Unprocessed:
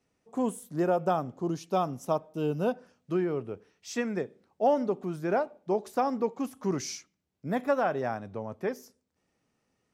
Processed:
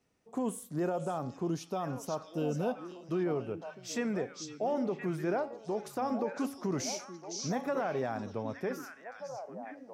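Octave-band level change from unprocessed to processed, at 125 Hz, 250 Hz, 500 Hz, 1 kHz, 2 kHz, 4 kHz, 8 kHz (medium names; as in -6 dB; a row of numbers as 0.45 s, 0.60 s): -2.0 dB, -2.5 dB, -5.0 dB, -6.0 dB, -3.5 dB, +0.5 dB, +1.5 dB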